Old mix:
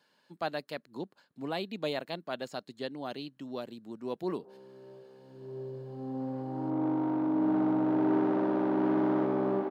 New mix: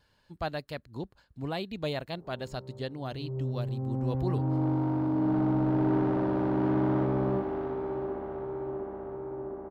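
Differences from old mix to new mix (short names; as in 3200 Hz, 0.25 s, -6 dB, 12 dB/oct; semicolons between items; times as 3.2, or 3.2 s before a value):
background: entry -2.20 s; master: remove HPF 190 Hz 24 dB/oct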